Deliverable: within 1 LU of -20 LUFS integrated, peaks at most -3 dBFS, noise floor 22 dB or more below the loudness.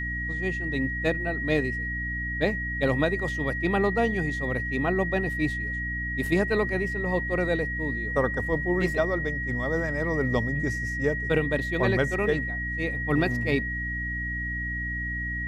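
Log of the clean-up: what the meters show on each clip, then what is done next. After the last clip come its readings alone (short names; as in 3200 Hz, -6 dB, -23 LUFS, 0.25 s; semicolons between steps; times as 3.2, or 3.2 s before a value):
hum 60 Hz; harmonics up to 300 Hz; hum level -32 dBFS; steady tone 1900 Hz; tone level -30 dBFS; loudness -26.5 LUFS; peak -10.5 dBFS; loudness target -20.0 LUFS
-> de-hum 60 Hz, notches 5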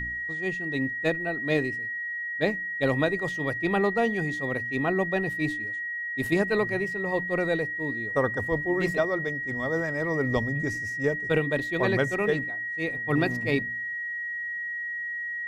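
hum none; steady tone 1900 Hz; tone level -30 dBFS
-> notch 1900 Hz, Q 30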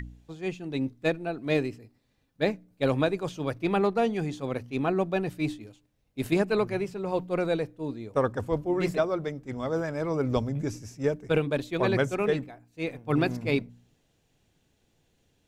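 steady tone none; loudness -29.0 LUFS; peak -11.0 dBFS; loudness target -20.0 LUFS
-> gain +9 dB; limiter -3 dBFS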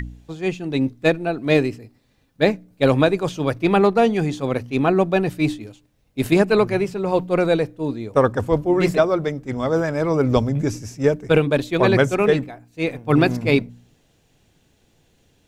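loudness -20.0 LUFS; peak -3.0 dBFS; noise floor -62 dBFS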